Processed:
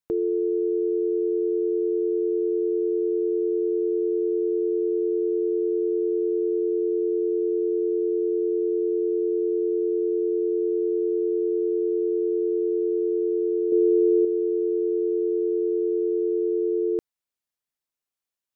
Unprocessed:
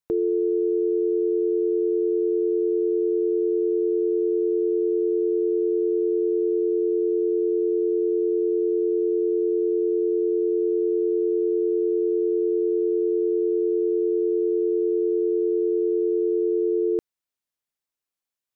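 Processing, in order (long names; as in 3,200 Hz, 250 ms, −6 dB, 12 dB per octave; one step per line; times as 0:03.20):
0:13.72–0:14.25: parametric band 300 Hz +5.5 dB 2.7 octaves
level −1.5 dB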